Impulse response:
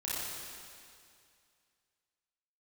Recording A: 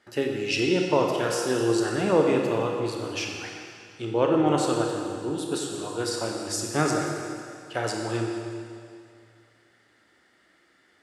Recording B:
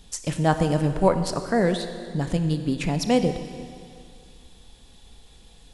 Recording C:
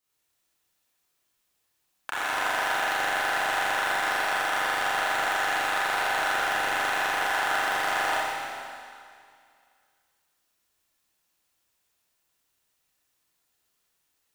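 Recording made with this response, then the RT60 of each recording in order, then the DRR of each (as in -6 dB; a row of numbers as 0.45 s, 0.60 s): C; 2.3 s, 2.3 s, 2.3 s; 0.5 dB, 8.0 dB, -9.0 dB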